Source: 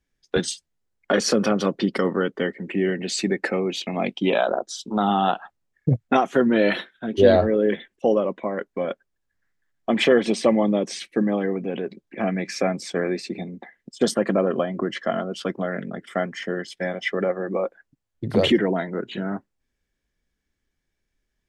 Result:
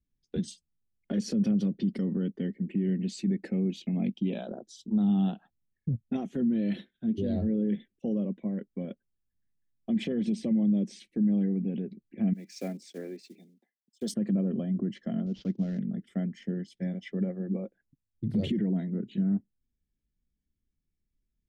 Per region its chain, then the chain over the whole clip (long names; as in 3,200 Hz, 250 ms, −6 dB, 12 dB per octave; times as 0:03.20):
0:12.33–0:14.14: one scale factor per block 5 bits + high-pass filter 370 Hz + multiband upward and downward expander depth 100%
0:15.26–0:15.79: variable-slope delta modulation 32 kbit/s + downward expander −37 dBFS
whole clip: drawn EQ curve 220 Hz 0 dB, 1,200 Hz −27 dB, 1,900 Hz −18 dB, 3,200 Hz −14 dB; brickwall limiter −21.5 dBFS; dynamic equaliser 200 Hz, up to +6 dB, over −41 dBFS, Q 2.6; level −2.5 dB